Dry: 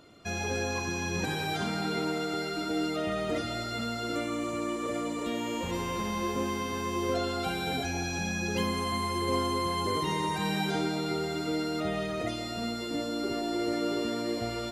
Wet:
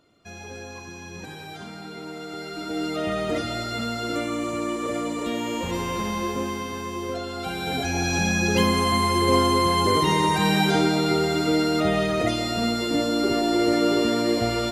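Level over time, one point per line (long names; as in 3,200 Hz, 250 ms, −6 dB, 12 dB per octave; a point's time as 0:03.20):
0:01.96 −7 dB
0:03.07 +5 dB
0:06.08 +5 dB
0:07.25 −1.5 dB
0:08.14 +9.5 dB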